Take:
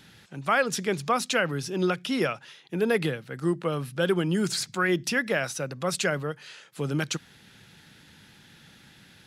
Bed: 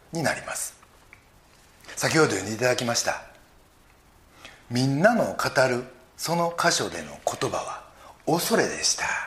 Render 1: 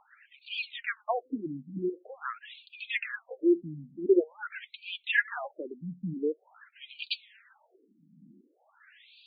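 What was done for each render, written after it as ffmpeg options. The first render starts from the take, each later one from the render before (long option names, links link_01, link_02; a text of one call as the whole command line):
ffmpeg -i in.wav -af "aphaser=in_gain=1:out_gain=1:delay=4.9:decay=0.6:speed=0.48:type=triangular,afftfilt=real='re*between(b*sr/1024,210*pow(3400/210,0.5+0.5*sin(2*PI*0.46*pts/sr))/1.41,210*pow(3400/210,0.5+0.5*sin(2*PI*0.46*pts/sr))*1.41)':imag='im*between(b*sr/1024,210*pow(3400/210,0.5+0.5*sin(2*PI*0.46*pts/sr))/1.41,210*pow(3400/210,0.5+0.5*sin(2*PI*0.46*pts/sr))*1.41)':win_size=1024:overlap=0.75" out.wav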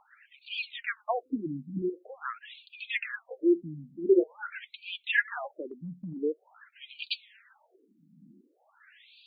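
ffmpeg -i in.wav -filter_complex "[0:a]asettb=1/sr,asplit=3[link_01][link_02][link_03];[link_01]atrim=end=1.234[link_04];[link_02]atrim=start=1.23:end=1.82,asetpts=PTS-STARTPTS,afade=type=in:duration=0.004:curve=qsin,afade=type=out:start_time=0.586:duration=0.004:curve=qsin,aecho=1:1:0.8:0.63,atrim=end_sample=26019[link_05];[link_03]atrim=start=1.816[link_06];[link_04][link_05]acrossfade=duration=0.004:curve1=hsin:curve2=qsin[link_07];[link_07][link_06]acrossfade=duration=0.004:curve1=qsin:curve2=hsin,asettb=1/sr,asplit=3[link_08][link_09][link_10];[link_08]atrim=end=4.014[link_11];[link_09]atrim=start=4.01:end=4.57,asetpts=PTS-STARTPTS,afade=type=in:duration=0.004:curve=qsin,afade=type=out:start_time=0.556:duration=0.004:curve=qsin,asplit=2[link_12][link_13];[link_13]adelay=31,volume=-10dB[link_14];[link_12][link_14]amix=inputs=2:normalize=0,atrim=end_sample=24696[link_15];[link_10]atrim=start=4.566[link_16];[link_11][link_15]acrossfade=duration=0.004:curve1=hsin:curve2=qsin[link_17];[link_17][link_16]acrossfade=duration=0.004:curve1=qsin:curve2=hsin,asettb=1/sr,asplit=3[link_18][link_19][link_20];[link_18]atrim=end=5.664[link_21];[link_19]atrim=start=5.66:end=6.18,asetpts=PTS-STARTPTS,afade=type=in:duration=0.004:curve=qsin,afade=type=out:start_time=0.516:duration=0.004:curve=qsin,acompressor=threshold=-35dB:ratio=6:attack=3.2:release=140:knee=1:detection=peak[link_22];[link_20]atrim=start=6.176[link_23];[link_21][link_22]acrossfade=duration=0.004:curve1=hsin:curve2=qsin[link_24];[link_24][link_23]acrossfade=duration=0.004:curve1=qsin:curve2=hsin" out.wav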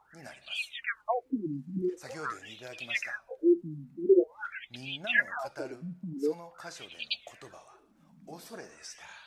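ffmpeg -i in.wav -i bed.wav -filter_complex "[1:a]volume=-23dB[link_01];[0:a][link_01]amix=inputs=2:normalize=0" out.wav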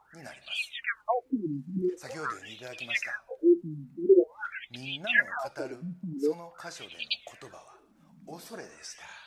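ffmpeg -i in.wav -af "volume=2dB" out.wav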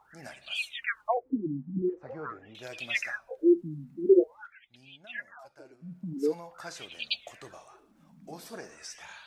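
ffmpeg -i in.wav -filter_complex "[0:a]asettb=1/sr,asplit=3[link_01][link_02][link_03];[link_01]atrim=end=1.174[link_04];[link_02]atrim=start=1.17:end=2.55,asetpts=PTS-STARTPTS,afade=type=in:duration=0.004:curve=qsin,afade=type=out:start_time=1.376:duration=0.004:curve=qsin,lowpass=1000[link_05];[link_03]atrim=start=2.546[link_06];[link_04][link_05]acrossfade=duration=0.004:curve1=hsin:curve2=qsin[link_07];[link_07][link_06]acrossfade=duration=0.004:curve1=qsin:curve2=hsin,asplit=3[link_08][link_09][link_10];[link_08]atrim=end=4.48,asetpts=PTS-STARTPTS,afade=type=out:start_time=4.14:duration=0.34:curve=qsin:silence=0.16788[link_11];[link_09]atrim=start=4.48:end=5.78,asetpts=PTS-STARTPTS,volume=-15.5dB[link_12];[link_10]atrim=start=5.78,asetpts=PTS-STARTPTS,afade=type=in:duration=0.34:curve=qsin:silence=0.16788[link_13];[link_11][link_12][link_13]concat=n=3:v=0:a=1" out.wav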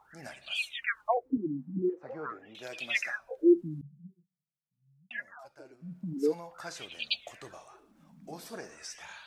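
ffmpeg -i in.wav -filter_complex "[0:a]asettb=1/sr,asplit=3[link_01][link_02][link_03];[link_01]atrim=end=1.374[link_04];[link_02]atrim=start=1.37:end=3.2,asetpts=PTS-STARTPTS,afade=type=in:duration=0.004:curve=qsin,afade=type=out:start_time=1.826:duration=0.004:curve=qsin,highpass=170[link_05];[link_03]atrim=start=3.196[link_06];[link_04][link_05]acrossfade=duration=0.004:curve1=hsin:curve2=qsin[link_07];[link_07][link_06]acrossfade=duration=0.004:curve1=qsin:curve2=hsin,asettb=1/sr,asplit=3[link_08][link_09][link_10];[link_08]atrim=end=3.814[link_11];[link_09]atrim=start=3.81:end=5.11,asetpts=PTS-STARTPTS,afade=type=in:duration=0.004:curve=qsin,afade=type=out:start_time=1.296:duration=0.004:curve=qsin,asuperpass=centerf=160:order=8:qfactor=2.9[link_12];[link_10]atrim=start=5.106[link_13];[link_11][link_12]acrossfade=duration=0.004:curve1=hsin:curve2=qsin[link_14];[link_14][link_13]acrossfade=duration=0.004:curve1=qsin:curve2=hsin" out.wav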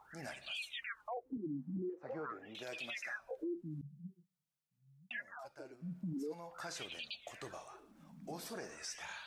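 ffmpeg -i in.wav -af "acompressor=threshold=-40dB:ratio=2,alimiter=level_in=10.5dB:limit=-24dB:level=0:latency=1:release=12,volume=-10.5dB" out.wav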